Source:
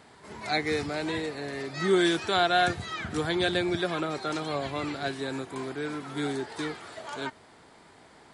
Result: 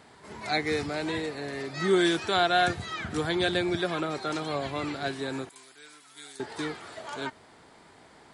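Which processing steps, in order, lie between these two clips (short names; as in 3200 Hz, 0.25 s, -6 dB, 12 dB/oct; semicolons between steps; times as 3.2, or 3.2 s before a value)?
5.49–6.4 pre-emphasis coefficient 0.97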